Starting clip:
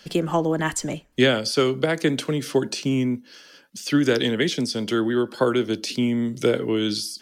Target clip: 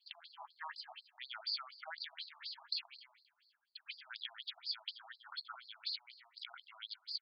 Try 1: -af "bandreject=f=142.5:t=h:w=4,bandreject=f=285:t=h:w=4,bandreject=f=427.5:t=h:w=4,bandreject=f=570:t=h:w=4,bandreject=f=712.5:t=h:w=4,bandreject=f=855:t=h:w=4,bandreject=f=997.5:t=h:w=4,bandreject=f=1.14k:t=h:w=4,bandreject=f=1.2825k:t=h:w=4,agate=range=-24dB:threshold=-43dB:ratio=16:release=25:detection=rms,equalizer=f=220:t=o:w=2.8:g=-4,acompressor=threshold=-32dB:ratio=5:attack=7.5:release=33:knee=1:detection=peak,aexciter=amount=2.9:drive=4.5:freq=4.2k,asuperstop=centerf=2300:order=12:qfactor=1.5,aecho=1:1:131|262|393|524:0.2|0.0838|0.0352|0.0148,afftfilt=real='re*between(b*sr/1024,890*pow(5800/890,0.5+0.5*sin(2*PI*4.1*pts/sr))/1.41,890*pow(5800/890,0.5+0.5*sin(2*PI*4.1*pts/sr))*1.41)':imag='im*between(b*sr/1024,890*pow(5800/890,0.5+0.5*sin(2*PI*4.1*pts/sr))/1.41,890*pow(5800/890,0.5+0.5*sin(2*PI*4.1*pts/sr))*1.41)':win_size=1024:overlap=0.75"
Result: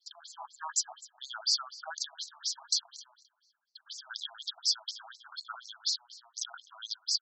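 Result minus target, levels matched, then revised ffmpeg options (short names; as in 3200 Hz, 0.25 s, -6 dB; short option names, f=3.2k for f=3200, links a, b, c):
2000 Hz band -8.0 dB; compressor: peak gain reduction -7 dB
-af "bandreject=f=142.5:t=h:w=4,bandreject=f=285:t=h:w=4,bandreject=f=427.5:t=h:w=4,bandreject=f=570:t=h:w=4,bandreject=f=712.5:t=h:w=4,bandreject=f=855:t=h:w=4,bandreject=f=997.5:t=h:w=4,bandreject=f=1.14k:t=h:w=4,bandreject=f=1.2825k:t=h:w=4,agate=range=-24dB:threshold=-43dB:ratio=16:release=25:detection=rms,equalizer=f=220:t=o:w=2.8:g=-4,acompressor=threshold=-41dB:ratio=5:attack=7.5:release=33:knee=1:detection=peak,aexciter=amount=2.9:drive=4.5:freq=4.2k,asuperstop=centerf=6700:order=12:qfactor=1.5,aecho=1:1:131|262|393|524:0.2|0.0838|0.0352|0.0148,afftfilt=real='re*between(b*sr/1024,890*pow(5800/890,0.5+0.5*sin(2*PI*4.1*pts/sr))/1.41,890*pow(5800/890,0.5+0.5*sin(2*PI*4.1*pts/sr))*1.41)':imag='im*between(b*sr/1024,890*pow(5800/890,0.5+0.5*sin(2*PI*4.1*pts/sr))/1.41,890*pow(5800/890,0.5+0.5*sin(2*PI*4.1*pts/sr))*1.41)':win_size=1024:overlap=0.75"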